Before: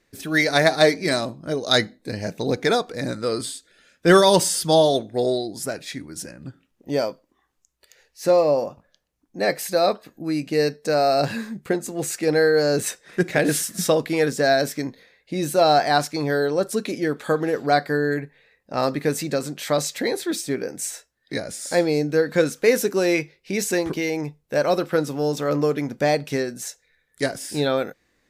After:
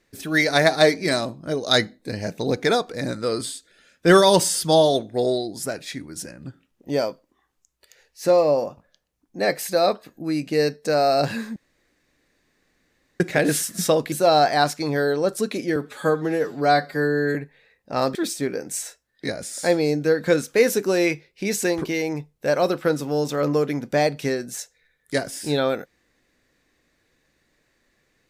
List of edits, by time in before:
0:11.56–0:13.20: fill with room tone
0:14.12–0:15.46: remove
0:17.10–0:18.16: time-stretch 1.5×
0:18.96–0:20.23: remove

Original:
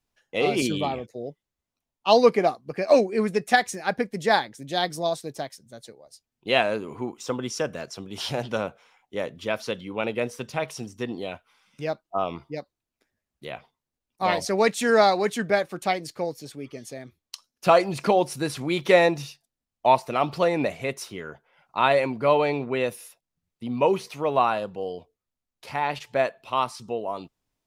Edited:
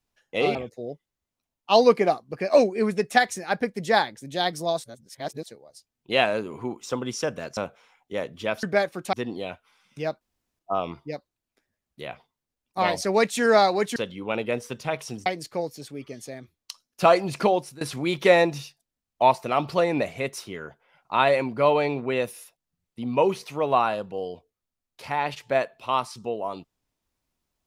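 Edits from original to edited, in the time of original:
0:00.55–0:00.92: remove
0:05.21–0:05.83: reverse
0:07.94–0:08.59: remove
0:09.65–0:10.95: swap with 0:15.40–0:15.90
0:12.03: splice in room tone 0.38 s
0:18.10–0:18.45: fade out, to −20.5 dB

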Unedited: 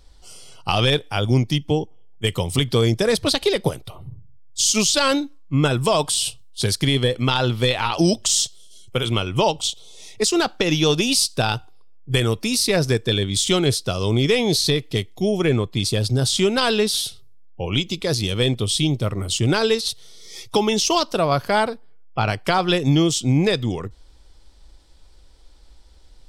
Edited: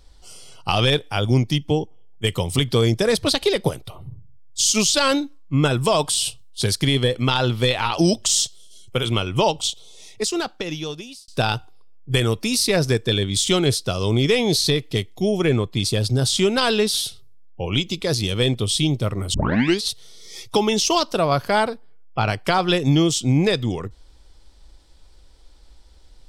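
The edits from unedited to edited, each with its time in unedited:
0:09.68–0:11.28: fade out
0:19.34: tape start 0.48 s

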